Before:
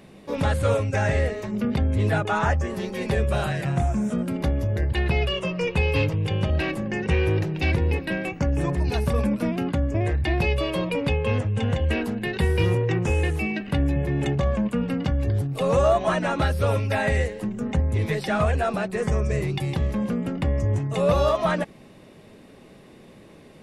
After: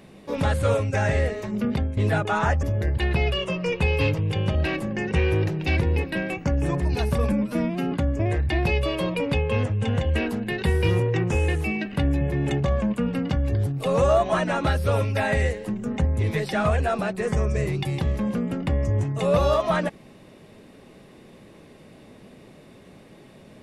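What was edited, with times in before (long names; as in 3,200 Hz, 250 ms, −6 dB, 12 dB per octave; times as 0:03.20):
0:01.65–0:01.97: fade out equal-power, to −12 dB
0:02.63–0:04.58: remove
0:09.27–0:09.67: time-stretch 1.5×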